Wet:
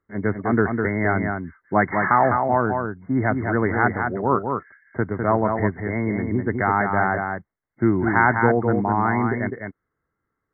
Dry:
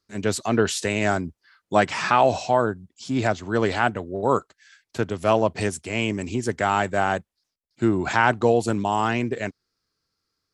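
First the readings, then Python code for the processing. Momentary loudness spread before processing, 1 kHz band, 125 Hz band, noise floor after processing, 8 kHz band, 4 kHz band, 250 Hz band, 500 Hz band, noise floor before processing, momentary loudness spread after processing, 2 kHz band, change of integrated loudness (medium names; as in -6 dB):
9 LU, +2.0 dB, +4.0 dB, -80 dBFS, under -40 dB, under -40 dB, +3.5 dB, -0.5 dB, -81 dBFS, 10 LU, +3.0 dB, +1.5 dB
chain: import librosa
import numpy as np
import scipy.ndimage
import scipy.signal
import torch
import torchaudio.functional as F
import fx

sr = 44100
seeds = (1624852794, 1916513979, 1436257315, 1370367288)

p1 = fx.dynamic_eq(x, sr, hz=550.0, q=1.7, threshold_db=-34.0, ratio=4.0, max_db=-7)
p2 = fx.brickwall_lowpass(p1, sr, high_hz=2200.0)
p3 = p2 + fx.echo_single(p2, sr, ms=204, db=-5.0, dry=0)
y = p3 * 10.0 ** (3.0 / 20.0)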